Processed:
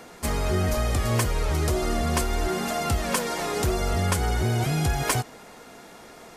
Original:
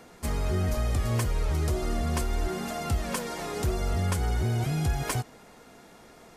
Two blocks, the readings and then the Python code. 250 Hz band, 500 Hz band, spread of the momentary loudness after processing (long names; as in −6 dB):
+4.0 dB, +6.0 dB, 3 LU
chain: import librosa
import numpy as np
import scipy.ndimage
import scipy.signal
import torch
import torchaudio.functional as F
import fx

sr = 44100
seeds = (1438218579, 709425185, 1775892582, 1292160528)

y = fx.low_shelf(x, sr, hz=230.0, db=-6.0)
y = y * 10.0 ** (7.0 / 20.0)